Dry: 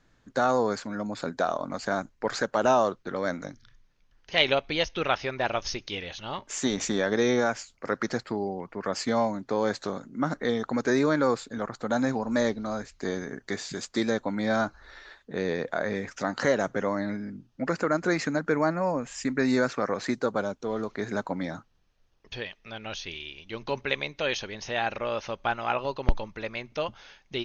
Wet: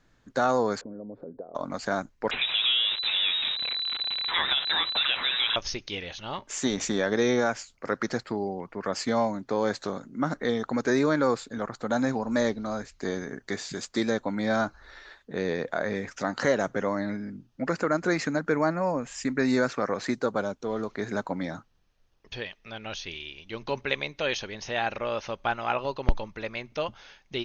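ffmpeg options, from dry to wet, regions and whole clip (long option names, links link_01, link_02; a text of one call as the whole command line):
ffmpeg -i in.wav -filter_complex "[0:a]asettb=1/sr,asplit=3[link_01][link_02][link_03];[link_01]atrim=end=0.814[link_04];[link_02]atrim=start=0.81:end=1.55,asetpts=PTS-STARTPTS,afade=type=in:duration=0.004:curve=qsin,afade=type=out:start_time=0.736:duration=0.004:curve=qsin,acompressor=threshold=-39dB:ratio=8:attack=3.2:release=140:knee=1:detection=peak,asoftclip=type=hard:threshold=-34dB,lowpass=frequency=470:width_type=q:width=2.9[link_05];[link_03]atrim=start=1.546[link_06];[link_04][link_05]acrossfade=duration=0.004:curve1=hsin:curve2=qsin[link_07];[link_07][link_06]acrossfade=duration=0.004:curve1=qsin:curve2=hsin,asettb=1/sr,asplit=3[link_08][link_09][link_10];[link_08]atrim=end=2.314[link_11];[link_09]atrim=start=2.31:end=5.56,asetpts=PTS-STARTPTS,afade=type=in:duration=0.004:curve=qsin,afade=type=out:start_time=3.246:duration=0.004:curve=qsin,aeval=exprs='val(0)+0.5*0.0596*sgn(val(0))':channel_layout=same,acompressor=threshold=-22dB:ratio=3:attack=3.2:release=140:knee=1:detection=peak,lowpass=frequency=3400:width_type=q:width=0.5098,lowpass=frequency=3400:width_type=q:width=0.6013,lowpass=frequency=3400:width_type=q:width=0.9,lowpass=frequency=3400:width_type=q:width=2.563,afreqshift=-4000[link_12];[link_10]atrim=start=5.556[link_13];[link_11][link_12]acrossfade=duration=0.004:curve1=hsin:curve2=qsin[link_14];[link_14][link_13]acrossfade=duration=0.004:curve1=qsin:curve2=hsin" out.wav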